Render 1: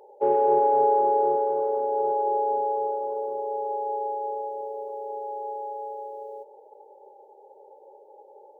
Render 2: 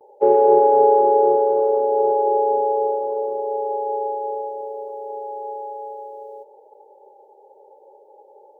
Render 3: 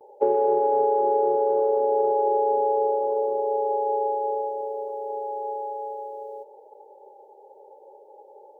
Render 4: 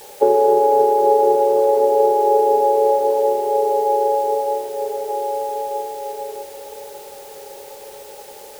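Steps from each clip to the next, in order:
noise gate with hold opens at −47 dBFS; dynamic equaliser 430 Hz, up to +7 dB, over −34 dBFS, Q 0.83; level +1.5 dB
downward compressor 6 to 1, threshold −18 dBFS, peak gain reduction 8.5 dB
in parallel at −12 dB: bit-depth reduction 6 bits, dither triangular; on the sum: tape delay 583 ms, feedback 78%, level −11 dB, low-pass 1,300 Hz; level +5 dB

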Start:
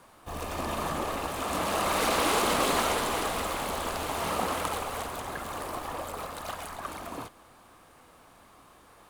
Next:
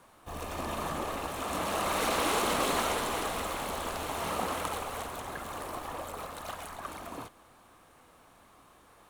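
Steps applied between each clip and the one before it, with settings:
notch filter 4,800 Hz, Q 19
level −3 dB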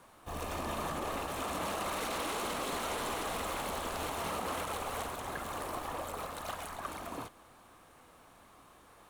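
brickwall limiter −27 dBFS, peak gain reduction 11 dB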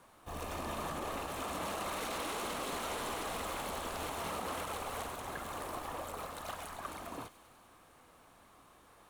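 delay with a high-pass on its return 99 ms, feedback 75%, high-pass 2,500 Hz, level −14 dB
level −2.5 dB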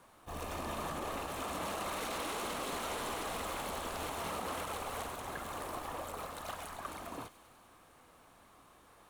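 level that may rise only so fast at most 420 dB per second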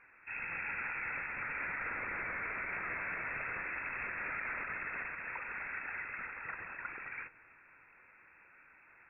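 voice inversion scrambler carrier 2,600 Hz

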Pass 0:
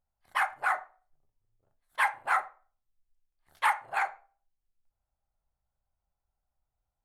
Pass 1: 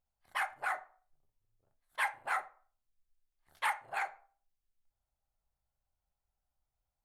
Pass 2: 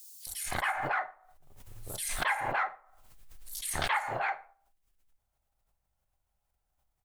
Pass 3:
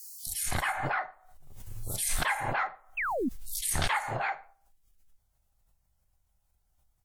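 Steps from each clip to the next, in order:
dynamic equaliser 1,100 Hz, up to −6 dB, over −38 dBFS, Q 1.1; level −3 dB
in parallel at −3 dB: brickwall limiter −29 dBFS, peak gain reduction 8 dB; on the sum: multiband delay without the direct sound highs, lows 270 ms, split 4,800 Hz; background raised ahead of every attack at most 32 dB per second
sound drawn into the spectrogram fall, 0:02.97–0:03.29, 220–2,800 Hz −31 dBFS; bass and treble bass +8 dB, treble +5 dB; WMA 64 kbit/s 44,100 Hz

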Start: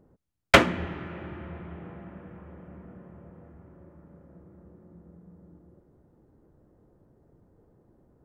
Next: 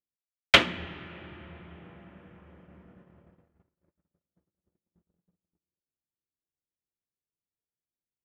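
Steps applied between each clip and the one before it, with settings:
noise gate −47 dBFS, range −37 dB
parametric band 3,300 Hz +13 dB 1.4 octaves
level −7.5 dB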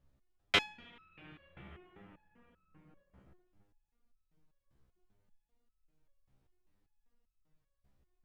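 automatic gain control gain up to 4.5 dB
background noise brown −62 dBFS
step-sequenced resonator 5.1 Hz 66–1,300 Hz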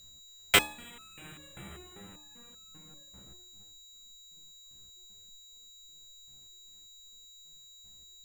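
steady tone 3,900 Hz −58 dBFS
sample-rate reduction 11,000 Hz, jitter 0%
hum removal 75.79 Hz, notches 16
level +6.5 dB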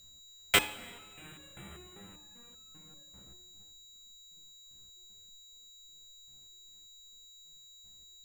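convolution reverb RT60 1.8 s, pre-delay 44 ms, DRR 16 dB
level −2.5 dB

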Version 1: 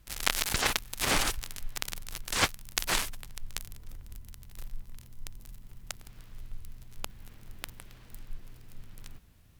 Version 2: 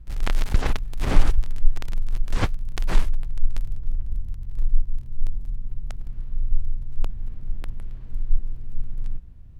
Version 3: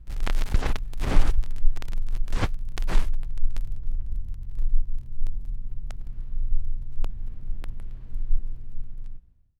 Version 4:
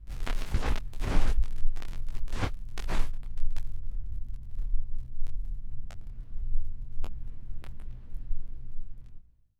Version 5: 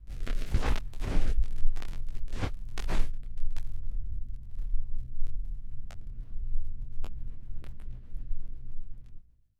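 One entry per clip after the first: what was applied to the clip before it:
spectral tilt −4 dB per octave; level −1 dB
fade-out on the ending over 1.13 s; level −2.5 dB
micro pitch shift up and down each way 48 cents
rotating-speaker cabinet horn 1 Hz, later 8 Hz, at 0:05.91; level +1 dB

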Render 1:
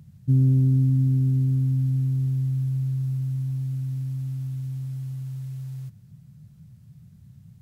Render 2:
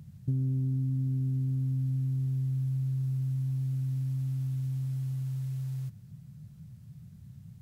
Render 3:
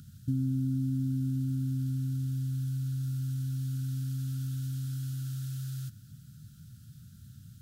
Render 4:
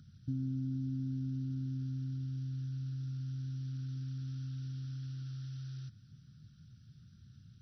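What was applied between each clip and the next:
downward compressor 4 to 1, threshold −29 dBFS, peak gain reduction 11.5 dB
drawn EQ curve 100 Hz 0 dB, 180 Hz −5 dB, 270 Hz +7 dB, 430 Hz −14 dB, 610 Hz −10 dB, 960 Hz −24 dB, 1,400 Hz +13 dB, 2,100 Hz −4 dB, 3,300 Hz +10 dB
level −6.5 dB; MP2 32 kbit/s 24,000 Hz

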